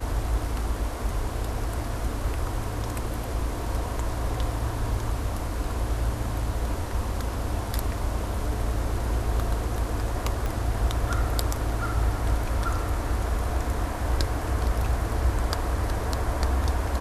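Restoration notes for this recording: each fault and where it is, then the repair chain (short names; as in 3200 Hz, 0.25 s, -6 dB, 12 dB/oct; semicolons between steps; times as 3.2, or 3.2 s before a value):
10.46 pop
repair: de-click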